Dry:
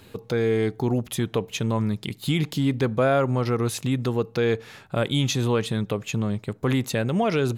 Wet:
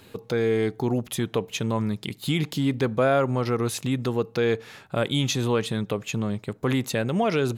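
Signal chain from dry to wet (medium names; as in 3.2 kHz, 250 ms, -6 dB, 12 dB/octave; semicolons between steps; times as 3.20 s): bass shelf 91 Hz -7.5 dB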